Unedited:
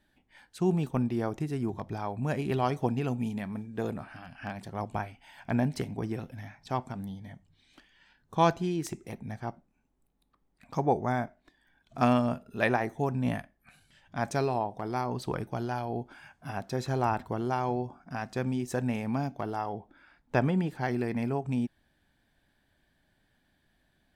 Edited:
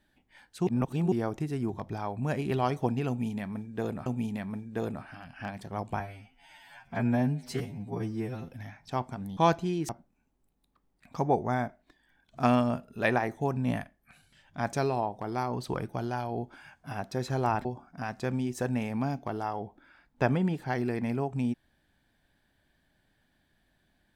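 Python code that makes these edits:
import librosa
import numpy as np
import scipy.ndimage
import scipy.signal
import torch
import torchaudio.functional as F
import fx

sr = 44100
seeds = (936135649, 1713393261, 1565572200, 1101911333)

y = fx.edit(x, sr, fx.reverse_span(start_s=0.67, length_s=0.45),
    fx.repeat(start_s=3.08, length_s=0.98, count=2),
    fx.stretch_span(start_s=5.02, length_s=1.24, factor=2.0),
    fx.cut(start_s=7.15, length_s=1.2),
    fx.cut(start_s=8.87, length_s=0.6),
    fx.cut(start_s=17.23, length_s=0.55), tone=tone)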